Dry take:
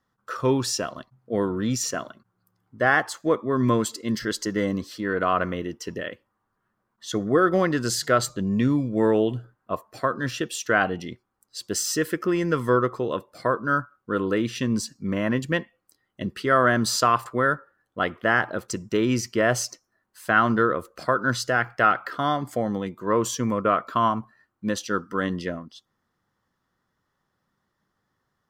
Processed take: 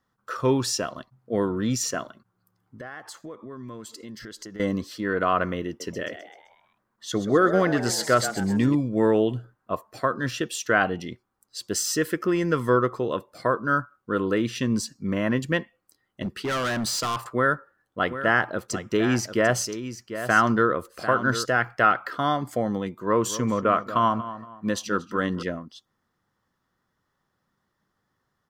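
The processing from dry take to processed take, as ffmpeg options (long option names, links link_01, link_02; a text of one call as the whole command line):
ffmpeg -i in.wav -filter_complex "[0:a]asettb=1/sr,asplit=3[link_01][link_02][link_03];[link_01]atrim=end=2.044[link_04];[link_02]atrim=start=2.04:end=4.6,asetpts=PTS-STARTPTS,afade=type=in:duration=0.004:curve=qsin,afade=type=out:start_time=2.556:duration=0.004:curve=qsin,acompressor=threshold=-37dB:ratio=6:attack=3.2:release=140:knee=1:detection=peak[link_05];[link_03]atrim=start=4.596[link_06];[link_04][link_05]acrossfade=duration=0.004:curve1=hsin:curve2=qsin[link_07];[link_07][link_06]acrossfade=duration=0.004:curve1=qsin:curve2=hsin,asettb=1/sr,asplit=3[link_08][link_09][link_10];[link_08]atrim=end=5.674[link_11];[link_09]atrim=start=5.67:end=8.75,asetpts=PTS-STARTPTS,afade=type=in:duration=0.004:curve=qsin,afade=type=out:start_time=3.076:duration=0.004:curve=qsin,asplit=6[link_12][link_13][link_14][link_15][link_16][link_17];[link_13]adelay=129,afreqshift=99,volume=-11dB[link_18];[link_14]adelay=258,afreqshift=198,volume=-17.4dB[link_19];[link_15]adelay=387,afreqshift=297,volume=-23.8dB[link_20];[link_16]adelay=516,afreqshift=396,volume=-30.1dB[link_21];[link_17]adelay=645,afreqshift=495,volume=-36.5dB[link_22];[link_12][link_18][link_19][link_20][link_21][link_22]amix=inputs=6:normalize=0,atrim=end_sample=135828[link_23];[link_10]atrim=start=8.746[link_24];[link_11][link_23]acrossfade=duration=0.004:curve1=hsin:curve2=qsin[link_25];[link_25][link_24]acrossfade=duration=0.004:curve1=qsin:curve2=hsin,asettb=1/sr,asplit=3[link_26][link_27][link_28];[link_26]atrim=end=16.224[link_29];[link_27]atrim=start=16.22:end=17.22,asetpts=PTS-STARTPTS,afade=type=in:duration=0.004:curve=qsin,afade=type=out:start_time=0.996:duration=0.004:curve=qsin,volume=24dB,asoftclip=hard,volume=-24dB[link_30];[link_28]atrim=start=17.216[link_31];[link_29][link_30]acrossfade=duration=0.004:curve1=hsin:curve2=qsin[link_32];[link_32][link_31]acrossfade=duration=0.004:curve1=qsin:curve2=hsin,asplit=3[link_33][link_34][link_35];[link_33]afade=type=out:start_time=18.04:duration=0.02[link_36];[link_34]aecho=1:1:745:0.282,afade=type=in:start_time=18.04:duration=0.02,afade=type=out:start_time=21.44:duration=0.02[link_37];[link_35]afade=type=in:start_time=21.44:duration=0.02[link_38];[link_36][link_37][link_38]amix=inputs=3:normalize=0,asettb=1/sr,asplit=3[link_39][link_40][link_41];[link_39]atrim=end=22.994[link_42];[link_40]atrim=start=22.99:end=25.43,asetpts=PTS-STARTPTS,afade=type=in:duration=0.004:curve=qsin,afade=type=out:start_time=2.436:duration=0.004:curve=qsin,asplit=2[link_43][link_44];[link_44]adelay=233,lowpass=frequency=2400:poles=1,volume=-13dB,asplit=2[link_45][link_46];[link_46]adelay=233,lowpass=frequency=2400:poles=1,volume=0.34,asplit=2[link_47][link_48];[link_48]adelay=233,lowpass=frequency=2400:poles=1,volume=0.34[link_49];[link_43][link_45][link_47][link_49]amix=inputs=4:normalize=0,atrim=end_sample=107604[link_50];[link_41]atrim=start=25.426[link_51];[link_42][link_50]acrossfade=duration=0.004:curve1=hsin:curve2=qsin[link_52];[link_52][link_51]acrossfade=duration=0.004:curve1=qsin:curve2=hsin" out.wav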